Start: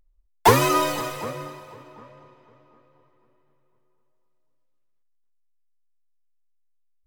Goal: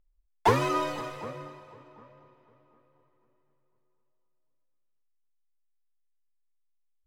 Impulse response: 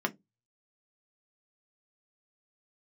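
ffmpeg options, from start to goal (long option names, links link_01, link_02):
-af "aemphasis=mode=reproduction:type=50fm,volume=-7dB"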